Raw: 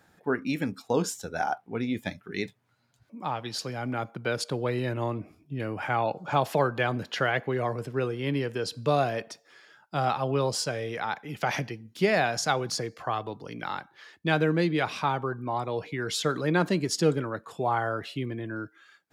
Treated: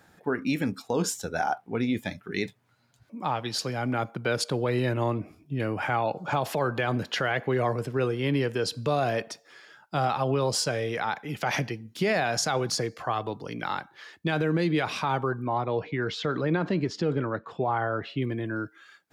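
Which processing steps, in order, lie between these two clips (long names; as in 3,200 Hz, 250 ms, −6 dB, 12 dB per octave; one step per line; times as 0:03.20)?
brickwall limiter −20 dBFS, peak gain reduction 8.5 dB
0:15.47–0:18.22: high-frequency loss of the air 210 metres
level +3.5 dB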